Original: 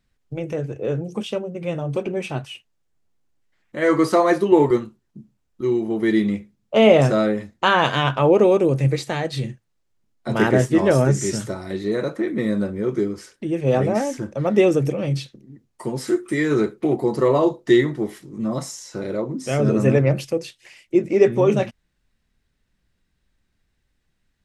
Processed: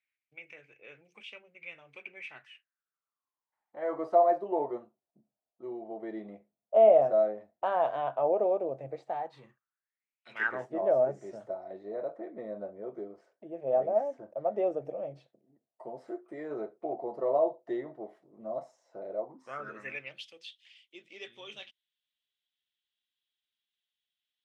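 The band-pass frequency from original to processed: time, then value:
band-pass, Q 7
2.12 s 2300 Hz
4.01 s 670 Hz
9.05 s 670 Hz
10.29 s 2800 Hz
10.7 s 660 Hz
19.19 s 660 Hz
20.16 s 3300 Hz

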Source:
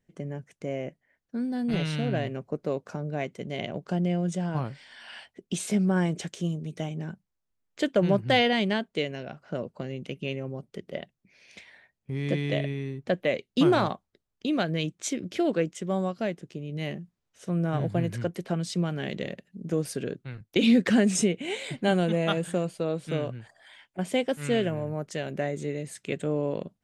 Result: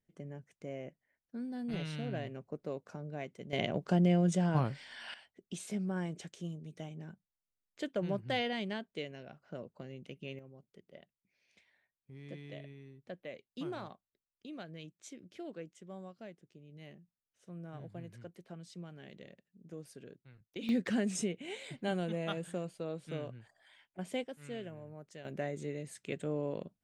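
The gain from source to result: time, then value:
-10.5 dB
from 3.53 s -0.5 dB
from 5.14 s -12 dB
from 10.39 s -19.5 dB
from 20.69 s -11 dB
from 24.24 s -17.5 dB
from 25.25 s -8 dB

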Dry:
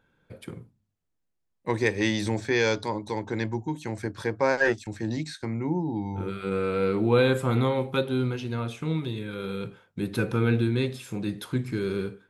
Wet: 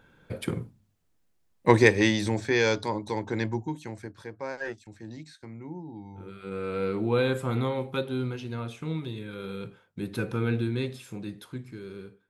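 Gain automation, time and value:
1.7 s +9 dB
2.2 s 0 dB
3.58 s 0 dB
4.25 s -12 dB
6.21 s -12 dB
6.76 s -4 dB
10.99 s -4 dB
11.79 s -12.5 dB

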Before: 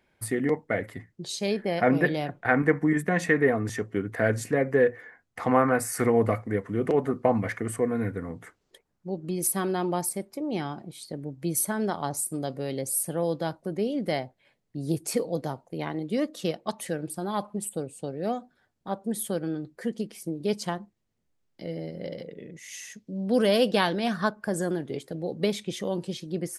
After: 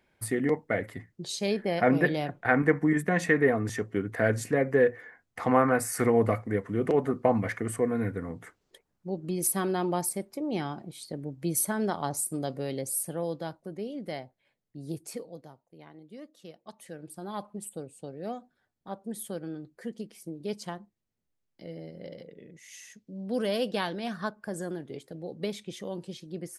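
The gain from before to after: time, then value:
12.58 s -1 dB
13.83 s -8.5 dB
15 s -8.5 dB
15.54 s -18.5 dB
16.48 s -18.5 dB
17.29 s -7 dB

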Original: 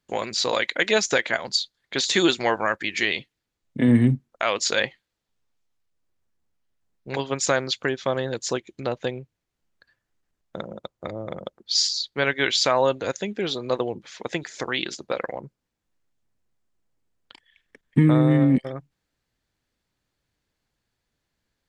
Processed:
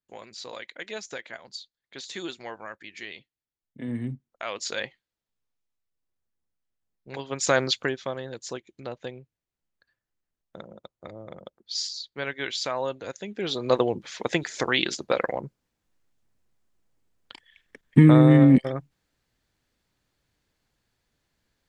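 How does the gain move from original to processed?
3.78 s -16 dB
4.64 s -8.5 dB
7.22 s -8.5 dB
7.63 s +3 dB
8.17 s -9 dB
13.19 s -9 dB
13.71 s +3 dB

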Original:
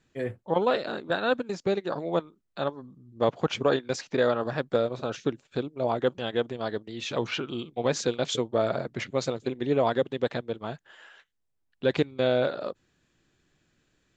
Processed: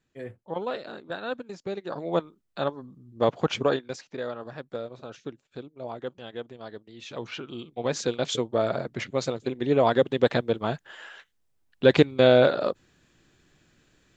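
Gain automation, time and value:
1.7 s -7 dB
2.17 s +1.5 dB
3.62 s +1.5 dB
4.08 s -9.5 dB
6.88 s -9.5 dB
8.17 s +0.5 dB
9.46 s +0.5 dB
10.36 s +7 dB

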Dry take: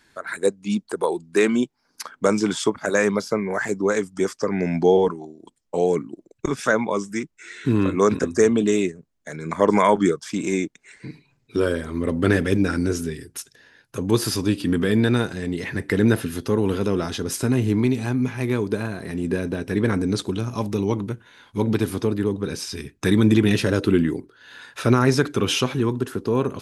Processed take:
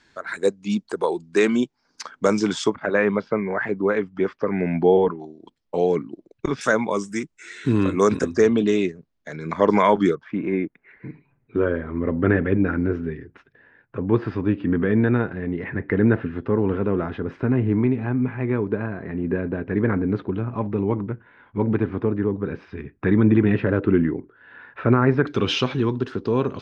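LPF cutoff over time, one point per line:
LPF 24 dB/oct
7000 Hz
from 2.75 s 2900 Hz
from 5.2 s 4900 Hz
from 6.61 s 9500 Hz
from 8.3 s 5200 Hz
from 10.15 s 2100 Hz
from 25.27 s 4800 Hz

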